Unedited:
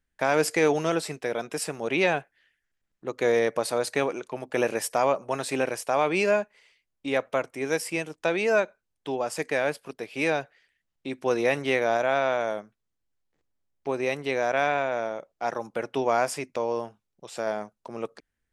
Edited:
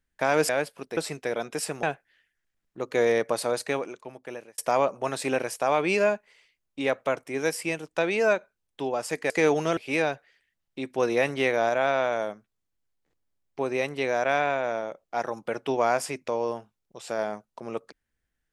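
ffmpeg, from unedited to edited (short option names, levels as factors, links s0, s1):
-filter_complex "[0:a]asplit=7[s0][s1][s2][s3][s4][s5][s6];[s0]atrim=end=0.492[s7];[s1]atrim=start=9.568:end=10.052[s8];[s2]atrim=start=0.958:end=1.822[s9];[s3]atrim=start=2.098:end=4.85,asetpts=PTS-STARTPTS,afade=t=out:st=1.612:d=1.14[s10];[s4]atrim=start=4.85:end=9.572,asetpts=PTS-STARTPTS,afade=t=in:d=0.004:c=hsin[s11];[s5]atrim=start=0.488:end=0.962[s12];[s6]atrim=start=10.048[s13];[s7][s8]acrossfade=d=0.004:c1=hsin:c2=hsin[s14];[s14][s9]acrossfade=d=0.004:c1=hsin:c2=hsin[s15];[s10][s11]concat=n=2:v=0:a=1[s16];[s15][s16]acrossfade=d=0.004:c1=hsin:c2=hsin[s17];[s17][s12]acrossfade=d=0.004:c1=hsin:c2=hsin[s18];[s18][s13]acrossfade=d=0.004:c1=hsin:c2=hsin"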